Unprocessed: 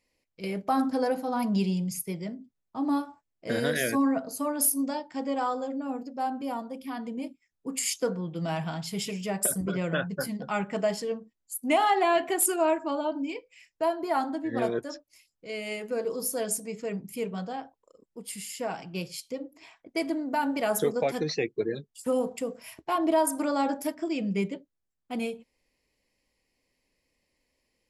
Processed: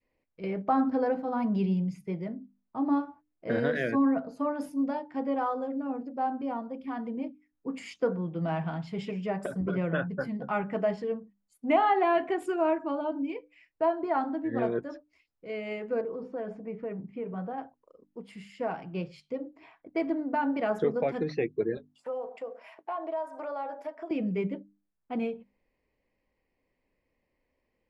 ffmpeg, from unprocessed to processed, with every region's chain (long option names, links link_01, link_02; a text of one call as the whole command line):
ffmpeg -i in.wav -filter_complex "[0:a]asettb=1/sr,asplit=3[link_01][link_02][link_03];[link_01]atrim=end=16.014[link_04];[link_02]atrim=start=16.01:end=17.58,asetpts=PTS-STARTPTS,afade=type=in:duration=0.004:curve=qsin,afade=type=out:start_time=1.566:duration=0.004:curve=qsin,lowpass=2200,acompressor=threshold=-32dB:ratio=4:attack=3.2:release=140:knee=1:detection=peak[link_05];[link_03]atrim=start=17.576[link_06];[link_04][link_05]acrossfade=duration=0.004:curve1=hsin:curve2=qsin[link_07];[link_07][link_06]acrossfade=duration=0.004:curve1=qsin:curve2=hsin,asettb=1/sr,asplit=3[link_08][link_09][link_10];[link_08]atrim=end=21.774[link_11];[link_09]atrim=start=21.77:end=24.11,asetpts=PTS-STARTPTS,afade=type=in:duration=0.004:curve=qsin,afade=type=out:start_time=2.336:duration=0.004:curve=qsin,highpass=frequency=620:width_type=q:width=1.7,acompressor=threshold=-39dB:ratio=2:attack=3.2:release=140:knee=1:detection=peak[link_12];[link_10]atrim=start=24.106[link_13];[link_11][link_12]acrossfade=duration=0.004:curve1=hsin:curve2=qsin[link_14];[link_14][link_13]acrossfade=duration=0.004:curve1=qsin:curve2=hsin,lowpass=1800,adynamicequalizer=threshold=0.0112:dfrequency=830:dqfactor=0.83:tfrequency=830:tqfactor=0.83:attack=5:release=100:ratio=0.375:range=2:mode=cutabove:tftype=bell,bandreject=frequency=50:width_type=h:width=6,bandreject=frequency=100:width_type=h:width=6,bandreject=frequency=150:width_type=h:width=6,bandreject=frequency=200:width_type=h:width=6,bandreject=frequency=250:width_type=h:width=6,bandreject=frequency=300:width_type=h:width=6,volume=1dB" out.wav